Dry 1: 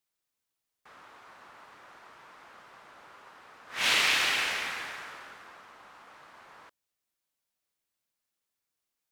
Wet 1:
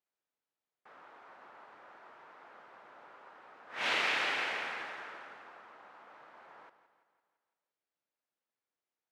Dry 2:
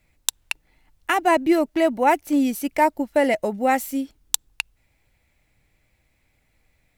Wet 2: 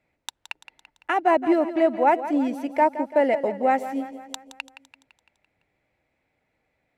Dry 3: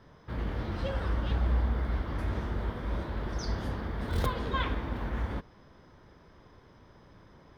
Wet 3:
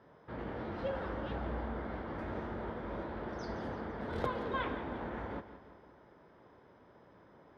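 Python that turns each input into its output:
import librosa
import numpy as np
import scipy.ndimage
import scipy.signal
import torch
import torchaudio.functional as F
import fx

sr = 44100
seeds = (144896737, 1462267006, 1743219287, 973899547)

y = fx.bandpass_q(x, sr, hz=660.0, q=0.55)
y = fx.peak_eq(y, sr, hz=1100.0, db=-3.5, octaves=0.26)
y = fx.echo_feedback(y, sr, ms=169, feedback_pct=54, wet_db=-13)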